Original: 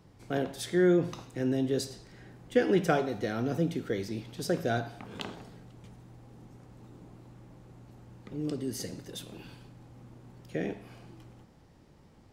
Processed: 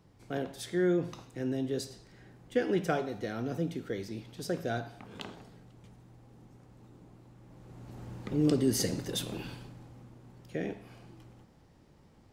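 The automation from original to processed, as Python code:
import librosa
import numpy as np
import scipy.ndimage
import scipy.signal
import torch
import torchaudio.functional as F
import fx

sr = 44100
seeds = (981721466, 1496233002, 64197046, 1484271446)

y = fx.gain(x, sr, db=fx.line((7.38, -4.0), (8.04, 7.5), (9.34, 7.5), (10.13, -2.0)))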